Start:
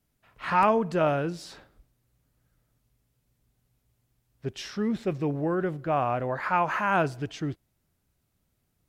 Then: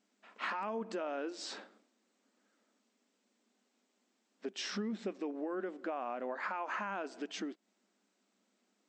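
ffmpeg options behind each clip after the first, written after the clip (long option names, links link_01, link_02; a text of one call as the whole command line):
ffmpeg -i in.wav -af "alimiter=limit=-20.5dB:level=0:latency=1:release=276,acompressor=threshold=-37dB:ratio=10,afftfilt=real='re*between(b*sr/4096,190,8300)':imag='im*between(b*sr/4096,190,8300)':win_size=4096:overlap=0.75,volume=2.5dB" out.wav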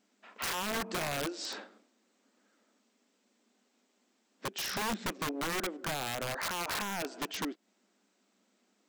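ffmpeg -i in.wav -af "aeval=exprs='(mod(44.7*val(0)+1,2)-1)/44.7':channel_layout=same,volume=4.5dB" out.wav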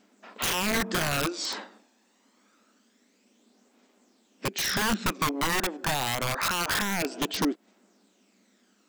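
ffmpeg -i in.wav -af "aphaser=in_gain=1:out_gain=1:delay=1.2:decay=0.42:speed=0.26:type=triangular,volume=7dB" out.wav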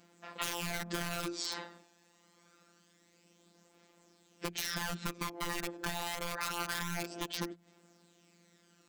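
ffmpeg -i in.wav -af "bandreject=frequency=60:width_type=h:width=6,bandreject=frequency=120:width_type=h:width=6,bandreject=frequency=180:width_type=h:width=6,acompressor=threshold=-34dB:ratio=10,afftfilt=real='hypot(re,im)*cos(PI*b)':imag='0':win_size=1024:overlap=0.75,volume=3dB" out.wav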